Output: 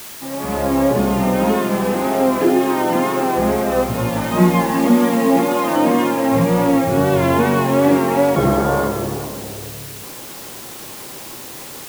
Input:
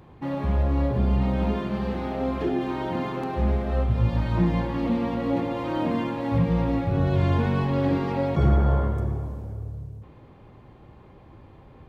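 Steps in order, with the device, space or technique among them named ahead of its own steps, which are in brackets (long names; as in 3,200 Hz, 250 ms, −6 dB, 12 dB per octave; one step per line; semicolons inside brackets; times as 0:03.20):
dictaphone (band-pass filter 250–3,000 Hz; automatic gain control gain up to 15 dB; tape wow and flutter; white noise bed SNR 17 dB)
0:04.30–0:05.76: comb filter 4.8 ms
level −1 dB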